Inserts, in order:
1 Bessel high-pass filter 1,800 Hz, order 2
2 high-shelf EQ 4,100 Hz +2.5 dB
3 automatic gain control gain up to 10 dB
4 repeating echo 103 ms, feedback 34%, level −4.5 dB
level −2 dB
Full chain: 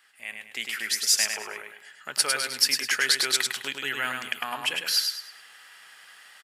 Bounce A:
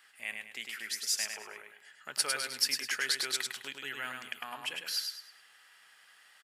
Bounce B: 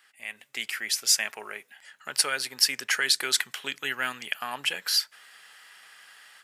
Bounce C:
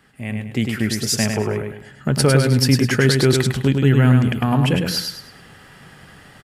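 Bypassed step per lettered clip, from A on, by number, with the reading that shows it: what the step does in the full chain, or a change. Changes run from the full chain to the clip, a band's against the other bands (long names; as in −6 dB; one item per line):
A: 3, change in crest factor +1.5 dB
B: 4, change in integrated loudness −1.5 LU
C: 1, 125 Hz band +35.5 dB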